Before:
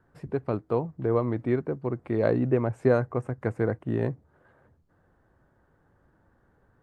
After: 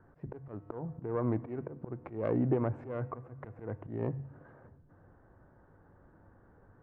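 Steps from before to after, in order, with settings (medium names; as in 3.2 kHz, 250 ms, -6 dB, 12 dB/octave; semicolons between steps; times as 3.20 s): self-modulated delay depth 0.2 ms; low-pass 1.5 kHz 12 dB/octave; de-hum 68.65 Hz, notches 2; in parallel at -1 dB: peak limiter -19 dBFS, peak gain reduction 8.5 dB; on the sum: compression 20:1, threshold -23 dBFS, peak gain reduction 10.5 dB; feedback comb 100 Hz, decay 1.3 s, harmonics odd, mix 40%; slow attack 229 ms; reverberation RT60 1.9 s, pre-delay 5 ms, DRR 19 dB; trim +3 dB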